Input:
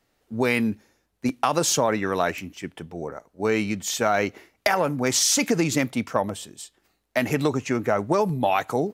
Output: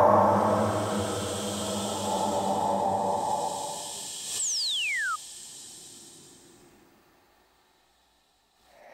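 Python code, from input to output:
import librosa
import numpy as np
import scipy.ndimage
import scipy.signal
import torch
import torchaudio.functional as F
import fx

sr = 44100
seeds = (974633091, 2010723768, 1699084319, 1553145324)

y = fx.reverse_delay(x, sr, ms=159, wet_db=-5)
y = fx.peak_eq(y, sr, hz=860.0, db=10.5, octaves=0.98)
y = fx.paulstretch(y, sr, seeds[0], factor=11.0, window_s=0.25, from_s=6.25)
y = fx.spec_paint(y, sr, seeds[1], shape='fall', start_s=4.39, length_s=0.77, low_hz=1200.0, high_hz=8300.0, level_db=-29.0)
y = fx.pre_swell(y, sr, db_per_s=53.0)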